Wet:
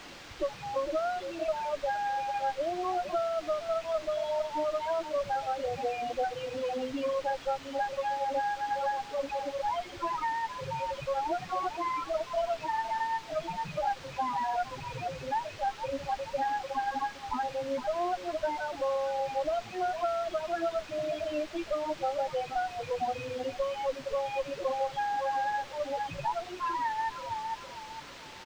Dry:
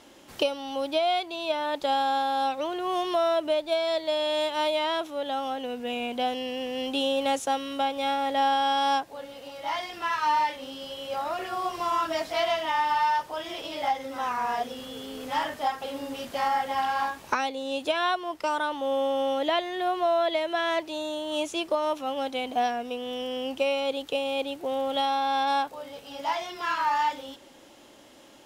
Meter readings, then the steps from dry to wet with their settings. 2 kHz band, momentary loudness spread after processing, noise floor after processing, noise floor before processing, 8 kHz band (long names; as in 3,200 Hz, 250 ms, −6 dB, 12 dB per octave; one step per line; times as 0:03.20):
−6.5 dB, 4 LU, −46 dBFS, −51 dBFS, −5.0 dB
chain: loose part that buzzes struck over −48 dBFS, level −18 dBFS
speech leveller 0.5 s
repeating echo 454 ms, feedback 36%, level −8.5 dB
reverb reduction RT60 1.1 s
harmonic generator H 3 −19 dB, 4 −10 dB, 6 −7 dB, 7 −38 dB, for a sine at −10 dBFS
spectral peaks only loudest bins 4
downward compressor 20 to 1, threshold −34 dBFS, peak gain reduction 12.5 dB
parametric band 650 Hz +12.5 dB 2.9 octaves
bit-depth reduction 6 bits, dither triangular
high-frequency loss of the air 170 metres
level −3.5 dB